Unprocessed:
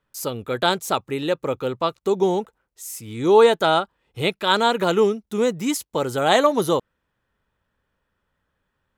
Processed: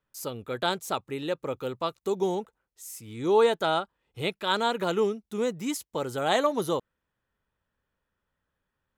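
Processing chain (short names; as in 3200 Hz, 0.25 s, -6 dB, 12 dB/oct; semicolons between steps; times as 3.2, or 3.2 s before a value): 1.56–2.35 high shelf 7200 Hz +7.5 dB; gain -7.5 dB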